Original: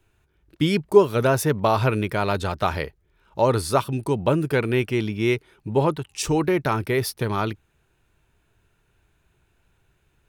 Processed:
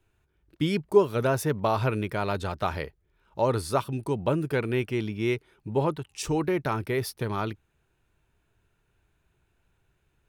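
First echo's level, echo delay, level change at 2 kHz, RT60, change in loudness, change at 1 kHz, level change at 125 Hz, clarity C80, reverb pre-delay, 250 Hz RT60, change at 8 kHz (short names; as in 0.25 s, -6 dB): none, none, -6.0 dB, none, -5.0 dB, -5.5 dB, -5.0 dB, none, none, none, -7.0 dB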